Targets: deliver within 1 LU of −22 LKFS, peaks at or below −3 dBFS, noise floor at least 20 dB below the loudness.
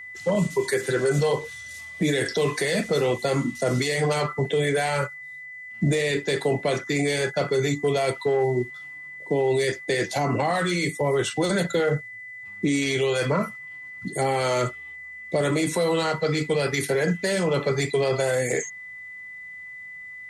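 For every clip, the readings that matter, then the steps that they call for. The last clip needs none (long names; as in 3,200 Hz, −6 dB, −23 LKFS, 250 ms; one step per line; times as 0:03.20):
interfering tone 2,000 Hz; level of the tone −37 dBFS; integrated loudness −24.5 LKFS; sample peak −12.5 dBFS; target loudness −22.0 LKFS
→ notch filter 2,000 Hz, Q 30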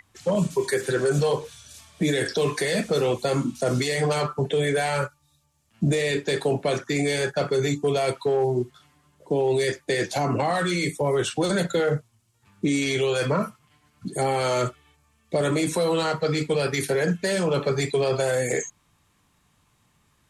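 interfering tone none found; integrated loudness −24.5 LKFS; sample peak −12.5 dBFS; target loudness −22.0 LKFS
→ level +2.5 dB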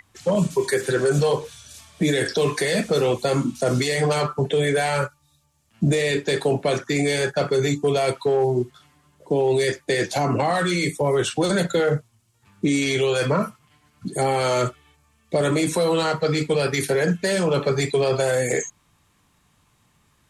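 integrated loudness −22.0 LKFS; sample peak −10.0 dBFS; background noise floor −63 dBFS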